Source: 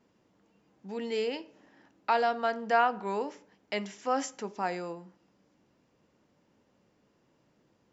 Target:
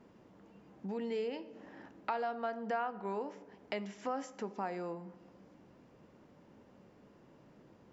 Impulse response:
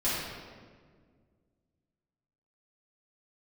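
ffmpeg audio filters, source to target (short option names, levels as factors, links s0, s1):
-filter_complex "[0:a]highshelf=f=2700:g=-11,acompressor=threshold=0.00282:ratio=2.5,asplit=2[s0][s1];[1:a]atrim=start_sample=2205[s2];[s1][s2]afir=irnorm=-1:irlink=0,volume=0.0473[s3];[s0][s3]amix=inputs=2:normalize=0,volume=2.66"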